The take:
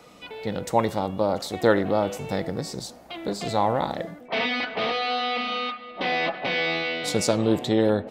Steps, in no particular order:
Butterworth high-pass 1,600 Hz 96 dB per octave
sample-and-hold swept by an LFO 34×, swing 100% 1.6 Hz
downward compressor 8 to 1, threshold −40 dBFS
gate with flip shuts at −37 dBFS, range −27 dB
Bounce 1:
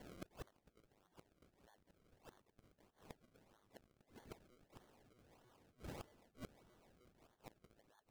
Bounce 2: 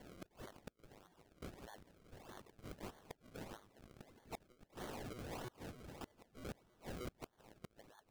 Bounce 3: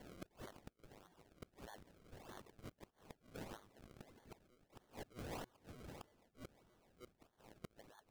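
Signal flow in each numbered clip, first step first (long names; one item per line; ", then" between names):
Butterworth high-pass, then downward compressor, then gate with flip, then sample-and-hold swept by an LFO
downward compressor, then Butterworth high-pass, then sample-and-hold swept by an LFO, then gate with flip
downward compressor, then Butterworth high-pass, then gate with flip, then sample-and-hold swept by an LFO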